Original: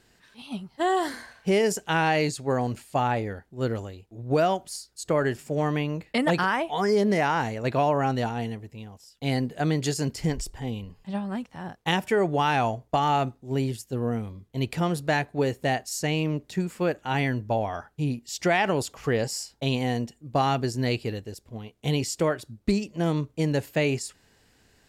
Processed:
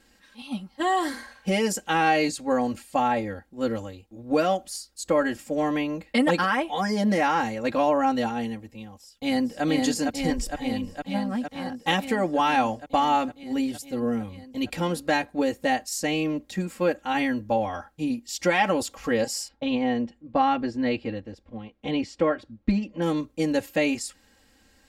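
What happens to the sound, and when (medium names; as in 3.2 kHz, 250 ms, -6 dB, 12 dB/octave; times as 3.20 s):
8.83–9.63 s: echo throw 460 ms, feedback 80%, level -2.5 dB
19.48–23.02 s: low-pass 2.7 kHz
whole clip: comb 3.7 ms, depth 100%; trim -1.5 dB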